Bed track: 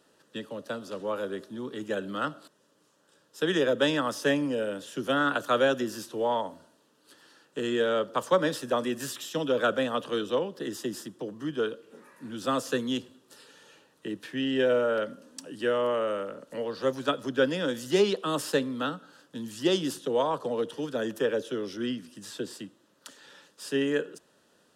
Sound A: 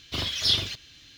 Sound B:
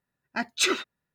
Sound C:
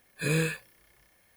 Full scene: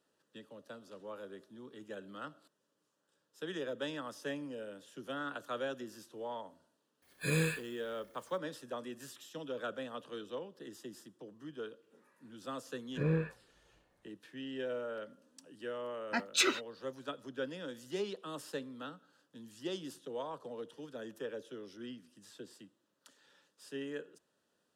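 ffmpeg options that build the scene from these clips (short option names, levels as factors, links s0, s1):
-filter_complex "[3:a]asplit=2[s0][s1];[0:a]volume=0.188[s2];[s0]highpass=44[s3];[s1]lowpass=1100[s4];[s3]atrim=end=1.36,asetpts=PTS-STARTPTS,volume=0.596,afade=t=in:d=0.004:c=hsin,afade=t=out:st=1.356:d=0.004:c=hsin,adelay=7020[s5];[s4]atrim=end=1.36,asetpts=PTS-STARTPTS,volume=0.668,afade=t=in:d=0.004:c=hsin,afade=t=out:st=1.356:d=0.004:c=hsin,adelay=12750[s6];[2:a]atrim=end=1.14,asetpts=PTS-STARTPTS,volume=0.562,afade=t=in:d=0.004:c=hsin,afade=t=out:st=1.136:d=0.004:c=hsin,adelay=15770[s7];[s2][s5][s6][s7]amix=inputs=4:normalize=0"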